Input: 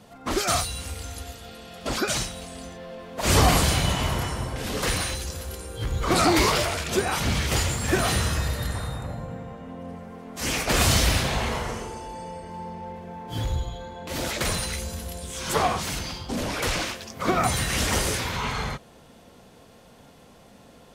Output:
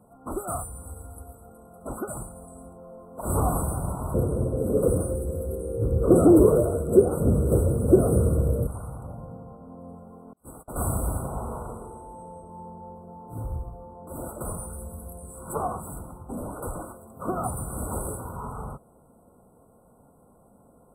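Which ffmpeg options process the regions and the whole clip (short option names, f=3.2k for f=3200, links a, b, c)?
-filter_complex "[0:a]asettb=1/sr,asplit=3[a][b][c];[a]atrim=end=4.144[d];[b]atrim=start=4.14:end=8.67,asetpts=PTS-STARTPTS,afade=t=in:d=0.004:c=qsin,afade=t=out:st=4.526:d=0.004:c=qsin,highpass=55,lowshelf=f=650:t=q:w=3:g=9.5[e];[c]atrim=start=8.666[f];[d][e]acrossfade=d=0.004:c1=hsin:c2=qsin[g];[g][f]acrossfade=d=0.004:c1=qsin:c2=hsin,asettb=1/sr,asplit=3[h][i][j];[h]atrim=end=10.334[k];[i]atrim=start=10.33:end=10.76,asetpts=PTS-STARTPTS,afade=t=in:d=0.004:c=qsin,afade=t=out:st=0.426:d=0.004:c=qsin,agate=range=-31dB:threshold=-26dB:ratio=16:release=100:detection=peak,acompressor=threshold=-31dB:ratio=2.5:attack=3.2:release=140:knee=1:detection=peak[l];[j]atrim=start=10.756[m];[k][l]acrossfade=d=0.004:c1=hsin:c2=qsin[n];[n][m]acrossfade=d=0.004:c1=qsin:c2=hsin,equalizer=f=1.5k:w=3.2:g=-7.5,afftfilt=real='re*(1-between(b*sr/4096,1500,7700))':imag='im*(1-between(b*sr/4096,1500,7700))':win_size=4096:overlap=0.75,volume=-5dB"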